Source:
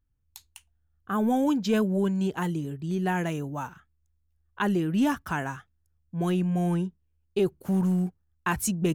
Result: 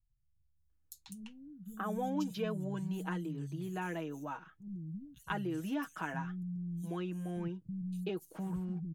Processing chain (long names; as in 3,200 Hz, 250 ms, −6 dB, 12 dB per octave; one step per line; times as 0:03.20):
comb filter 6.3 ms, depth 61%
downward compressor 2 to 1, threshold −34 dBFS, peak gain reduction 9 dB
three-band delay without the direct sound lows, highs, mids 560/700 ms, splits 180/5,100 Hz
level −4 dB